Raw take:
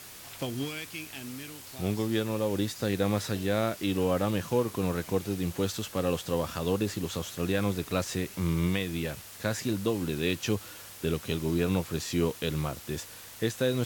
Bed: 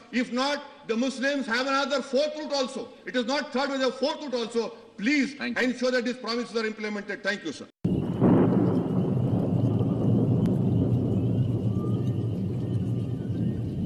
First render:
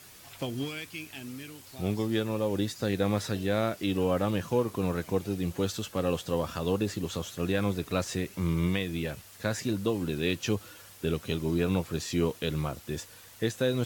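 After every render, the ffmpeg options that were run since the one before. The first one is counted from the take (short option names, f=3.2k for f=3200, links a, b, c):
-af "afftdn=nr=6:nf=-47"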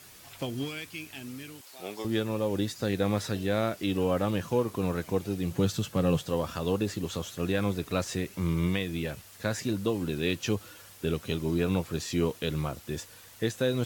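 -filter_complex "[0:a]asettb=1/sr,asplit=3[a][b][c];[a]atrim=end=1.614[d];[b]atrim=start=1.61:end=2.05,asetpts=PTS-STARTPTS,afade=t=in:d=0.004:c=qsin,afade=t=out:st=0.436:d=0.004:c=qsin,highpass=510[e];[c]atrim=start=2.046[f];[d][e]acrossfade=d=0.004:c1=hsin:c2=qsin[g];[g][f]acrossfade=d=0.004:c1=qsin:c2=hsin,asettb=1/sr,asplit=3[h][i][j];[h]atrim=end=5.514[k];[i]atrim=start=5.51:end=6.23,asetpts=PTS-STARTPTS,afade=t=in:d=0.004:c=qsin,afade=t=out:st=0.716:d=0.004:c=qsin,equalizer=f=140:w=1.5:g=12[l];[j]atrim=start=6.226[m];[k][l]acrossfade=d=0.004:c1=hsin:c2=qsin[n];[n][m]acrossfade=d=0.004:c1=qsin:c2=hsin"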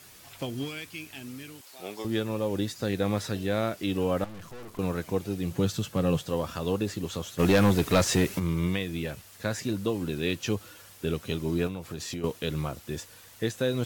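-filter_complex "[0:a]asettb=1/sr,asplit=3[a][b][c];[a]atrim=end=4.244[d];[b]atrim=start=4.24:end=4.79,asetpts=PTS-STARTPTS,afade=t=in:d=0.004:c=qsin,afade=t=out:st=0.546:d=0.004:c=qsin,aeval=exprs='(tanh(126*val(0)+0.7)-tanh(0.7))/126':c=same[e];[c]atrim=start=4.786[f];[d][e]acrossfade=d=0.004:c1=hsin:c2=qsin[g];[g][f]acrossfade=d=0.004:c1=qsin:c2=hsin,asplit=3[h][i][j];[h]afade=t=out:st=7.38:d=0.02[k];[i]aeval=exprs='0.188*sin(PI/2*2*val(0)/0.188)':c=same,afade=t=in:st=7.38:d=0.02,afade=t=out:st=8.38:d=0.02[l];[j]afade=t=in:st=8.38:d=0.02[m];[k][l][m]amix=inputs=3:normalize=0,asettb=1/sr,asplit=3[n][o][p];[n]atrim=end=11.674[q];[o]atrim=start=11.67:end=12.24,asetpts=PTS-STARTPTS,afade=t=in:d=0.004:c=qsin,afade=t=out:st=0.566:d=0.004:c=qsin,acompressor=threshold=-30dB:ratio=12:attack=3.2:release=140:knee=1:detection=peak[r];[p]atrim=start=12.236[s];[q][r]acrossfade=d=0.004:c1=hsin:c2=qsin[t];[t][s]acrossfade=d=0.004:c1=qsin:c2=hsin"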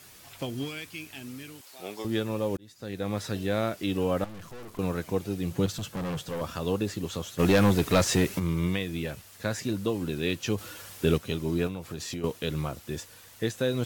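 -filter_complex "[0:a]asettb=1/sr,asplit=3[a][b][c];[a]atrim=end=5.664[d];[b]atrim=start=5.66:end=6.41,asetpts=PTS-STARTPTS,afade=t=in:d=0.004:c=qsin,afade=t=out:st=0.746:d=0.004:c=qsin,asoftclip=type=hard:threshold=-30dB[e];[c]atrim=start=6.406[f];[d][e]acrossfade=d=0.004:c1=hsin:c2=qsin[g];[g][f]acrossfade=d=0.004:c1=qsin:c2=hsin,asettb=1/sr,asplit=3[h][i][j];[h]atrim=end=10.584[k];[i]atrim=start=10.58:end=11.18,asetpts=PTS-STARTPTS,afade=t=in:d=0.004:c=qsin,afade=t=out:st=0.596:d=0.004:c=qsin,acontrast=49[l];[j]atrim=start=11.176[m];[k][l]acrossfade=d=0.004:c1=hsin:c2=qsin[n];[n][m]acrossfade=d=0.004:c1=qsin:c2=hsin,asplit=2[o][p];[o]atrim=end=2.57,asetpts=PTS-STARTPTS,afade=t=out:st=2.566:d=0.004:c=hsin[q];[p]atrim=start=2.57,asetpts=PTS-STARTPTS,afade=t=in:d=0.8[r];[q][r]concat=n=2:v=0:a=1"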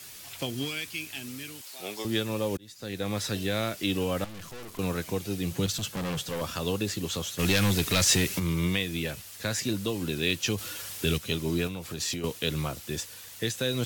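-filter_complex "[0:a]acrossover=split=160|2100[a][b][c];[b]alimiter=limit=-21.5dB:level=0:latency=1:release=191[d];[c]acontrast=80[e];[a][d][e]amix=inputs=3:normalize=0"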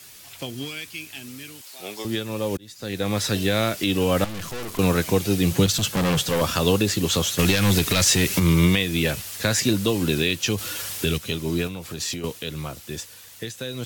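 -af "alimiter=limit=-18dB:level=0:latency=1:release=352,dynaudnorm=f=200:g=31:m=10.5dB"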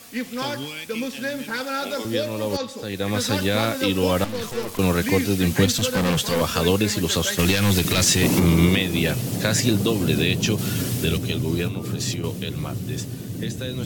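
-filter_complex "[1:a]volume=-2dB[a];[0:a][a]amix=inputs=2:normalize=0"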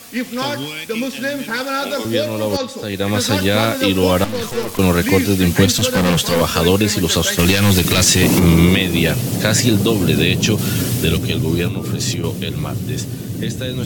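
-af "volume=6dB,alimiter=limit=-2dB:level=0:latency=1"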